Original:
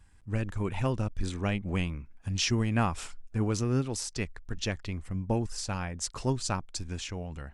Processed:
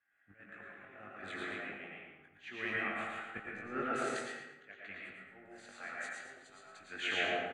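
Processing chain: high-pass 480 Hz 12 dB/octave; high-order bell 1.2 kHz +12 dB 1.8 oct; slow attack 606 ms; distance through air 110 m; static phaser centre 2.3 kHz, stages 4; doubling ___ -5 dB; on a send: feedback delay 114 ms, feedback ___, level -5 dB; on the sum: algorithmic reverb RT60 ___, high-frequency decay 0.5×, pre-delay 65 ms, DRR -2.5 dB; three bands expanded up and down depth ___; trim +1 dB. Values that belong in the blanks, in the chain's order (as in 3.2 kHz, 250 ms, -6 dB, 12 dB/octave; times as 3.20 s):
20 ms, 36%, 1.5 s, 70%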